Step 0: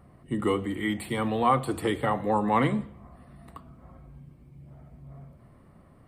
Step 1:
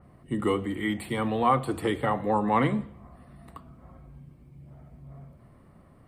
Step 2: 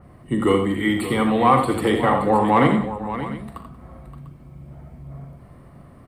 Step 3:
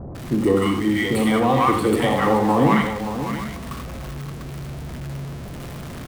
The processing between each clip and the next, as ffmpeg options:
ffmpeg -i in.wav -af "adynamicequalizer=threshold=0.00631:dfrequency=3600:dqfactor=0.7:tfrequency=3600:tqfactor=0.7:attack=5:release=100:ratio=0.375:range=2:mode=cutabove:tftype=highshelf" out.wav
ffmpeg -i in.wav -filter_complex "[0:a]asoftclip=type=tanh:threshold=-10.5dB,asplit=2[link_01][link_02];[link_02]aecho=0:1:41|60|86|184|573|697:0.282|0.237|0.398|0.119|0.251|0.158[link_03];[link_01][link_03]amix=inputs=2:normalize=0,volume=7dB" out.wav
ffmpeg -i in.wav -filter_complex "[0:a]aeval=exprs='val(0)+0.5*0.0355*sgn(val(0))':channel_layout=same,acrossover=split=870[link_01][link_02];[link_02]adelay=150[link_03];[link_01][link_03]amix=inputs=2:normalize=0" out.wav

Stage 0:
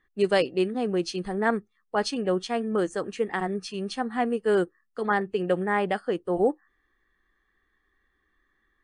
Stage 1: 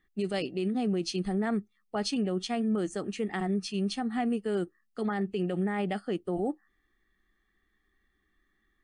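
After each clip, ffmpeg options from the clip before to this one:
ffmpeg -i in.wav -af "equalizer=frequency=200:width_type=o:width=0.33:gain=5,equalizer=frequency=500:width_type=o:width=0.33:gain=-9,equalizer=frequency=1000:width_type=o:width=0.33:gain=-11,equalizer=frequency=1600:width_type=o:width=0.33:gain=-7,alimiter=limit=-21.5dB:level=0:latency=1:release=39" out.wav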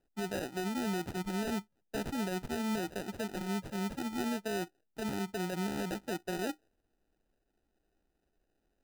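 ffmpeg -i in.wav -af "acrusher=samples=40:mix=1:aa=0.000001,volume=-5.5dB" out.wav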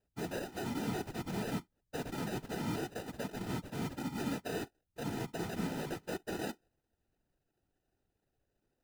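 ffmpeg -i in.wav -af "afftfilt=real='hypot(re,im)*cos(2*PI*random(0))':imag='hypot(re,im)*sin(2*PI*random(1))':win_size=512:overlap=0.75,volume=3dB" out.wav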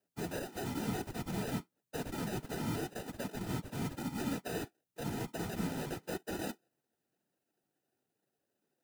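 ffmpeg -i in.wav -filter_complex "[0:a]acrossover=split=130|6700[link_01][link_02][link_03];[link_01]aeval=exprs='val(0)*gte(abs(val(0)),0.0015)':channel_layout=same[link_04];[link_02]flanger=delay=3:depth=5.5:regen=-60:speed=0.94:shape=triangular[link_05];[link_04][link_05][link_03]amix=inputs=3:normalize=0,volume=3.5dB" out.wav

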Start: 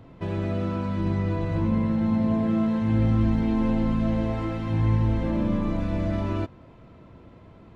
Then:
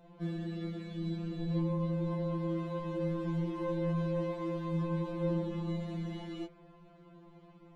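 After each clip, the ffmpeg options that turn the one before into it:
ffmpeg -i in.wav -af "bandreject=frequency=60.23:width_type=h:width=4,bandreject=frequency=120.46:width_type=h:width=4,bandreject=frequency=180.69:width_type=h:width=4,bandreject=frequency=240.92:width_type=h:width=4,bandreject=frequency=301.15:width_type=h:width=4,bandreject=frequency=361.38:width_type=h:width=4,bandreject=frequency=421.61:width_type=h:width=4,bandreject=frequency=481.84:width_type=h:width=4,bandreject=frequency=542.07:width_type=h:width=4,bandreject=frequency=602.3:width_type=h:width=4,bandreject=frequency=662.53:width_type=h:width=4,bandreject=frequency=722.76:width_type=h:width=4,bandreject=frequency=782.99:width_type=h:width=4,bandreject=frequency=843.22:width_type=h:width=4,bandreject=frequency=903.45:width_type=h:width=4,bandreject=frequency=963.68:width_type=h:width=4,bandreject=frequency=1023.91:width_type=h:width=4,bandreject=frequency=1084.14:width_type=h:width=4,bandreject=frequency=1144.37:width_type=h:width=4,bandreject=frequency=1204.6:width_type=h:width=4,bandreject=frequency=1264.83:width_type=h:width=4,bandreject=frequency=1325.06:width_type=h:width=4,bandreject=frequency=1385.29:width_type=h:width=4,bandreject=frequency=1445.52:width_type=h:width=4,bandreject=frequency=1505.75:width_type=h:width=4,bandreject=frequency=1565.98:width_type=h:width=4,bandreject=frequency=1626.21:width_type=h:width=4,bandreject=frequency=1686.44:width_type=h:width=4,bandreject=frequency=1746.67:width_type=h:width=4,bandreject=frequency=1806.9:width_type=h:width=4,bandreject=frequency=1867.13:width_type=h:width=4,bandreject=frequency=1927.36:width_type=h:width=4,bandreject=frequency=1987.59:width_type=h:width=4,bandreject=frequency=2047.82:width_type=h:width=4,bandreject=frequency=2108.05:width_type=h:width=4,bandreject=frequency=2168.28:width_type=h:width=4,bandreject=frequency=2228.51:width_type=h:width=4,bandreject=frequency=2288.74:width_type=h:width=4,bandreject=frequency=2348.97:width_type=h:width=4,bandreject=frequency=2409.2:width_type=h:width=4,afftfilt=real='re*2.83*eq(mod(b,8),0)':imag='im*2.83*eq(mod(b,8),0)':win_size=2048:overlap=0.75,volume=-4.5dB" out.wav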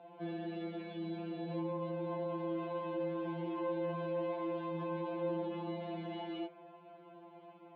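ffmpeg -i in.wav -filter_complex "[0:a]highpass=400,equalizer=frequency=520:width_type=q:width=4:gain=-3,equalizer=frequency=760:width_type=q:width=4:gain=7,equalizer=frequency=1200:width_type=q:width=4:gain=-8,equalizer=frequency=1900:width_type=q:width=4:gain=-8,lowpass=frequency=3000:width=0.5412,lowpass=frequency=3000:width=1.3066,asplit=2[link_01][link_02];[link_02]alimiter=level_in=17dB:limit=-24dB:level=0:latency=1:release=39,volume=-17dB,volume=0.5dB[link_03];[link_01][link_03]amix=inputs=2:normalize=0" out.wav

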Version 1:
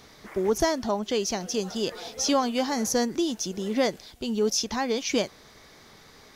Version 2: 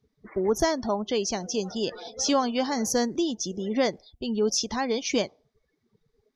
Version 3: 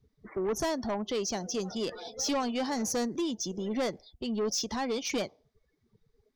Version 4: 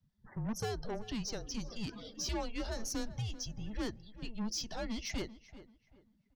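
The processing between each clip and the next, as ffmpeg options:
ffmpeg -i in.wav -af "afftdn=noise_reduction=32:noise_floor=-41" out.wav
ffmpeg -i in.wav -filter_complex "[0:a]acrossover=split=100|3400[link_01][link_02][link_03];[link_01]acompressor=mode=upward:threshold=-58dB:ratio=2.5[link_04];[link_04][link_02][link_03]amix=inputs=3:normalize=0,asoftclip=type=tanh:threshold=-23.5dB,volume=-2dB" out.wav
ffmpeg -i in.wav -filter_complex "[0:a]asplit=2[link_01][link_02];[link_02]adelay=387,lowpass=frequency=2400:poles=1,volume=-15dB,asplit=2[link_03][link_04];[link_04]adelay=387,lowpass=frequency=2400:poles=1,volume=0.32,asplit=2[link_05][link_06];[link_06]adelay=387,lowpass=frequency=2400:poles=1,volume=0.32[link_07];[link_01][link_03][link_05][link_07]amix=inputs=4:normalize=0,afreqshift=-220,volume=-6.5dB" out.wav

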